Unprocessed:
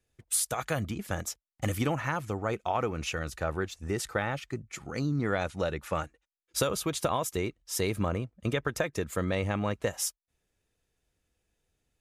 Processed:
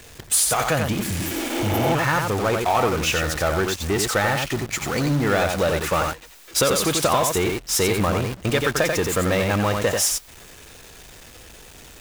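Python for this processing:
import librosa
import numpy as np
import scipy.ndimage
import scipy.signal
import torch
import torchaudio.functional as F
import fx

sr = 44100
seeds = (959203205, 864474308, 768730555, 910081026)

p1 = x + 0.5 * 10.0 ** (-42.5 / 20.0) * np.sign(x)
p2 = p1 + fx.echo_single(p1, sr, ms=89, db=-6.0, dry=0)
p3 = fx.spec_repair(p2, sr, seeds[0], start_s=1.1, length_s=0.77, low_hz=250.0, high_hz=11000.0, source='both')
p4 = fx.peak_eq(p3, sr, hz=11000.0, db=-3.5, octaves=0.4)
p5 = fx.quant_companded(p4, sr, bits=2)
p6 = p4 + (p5 * 10.0 ** (-6.5 / 20.0))
p7 = fx.low_shelf(p6, sr, hz=300.0, db=-5.0)
y = p7 * 10.0 ** (6.0 / 20.0)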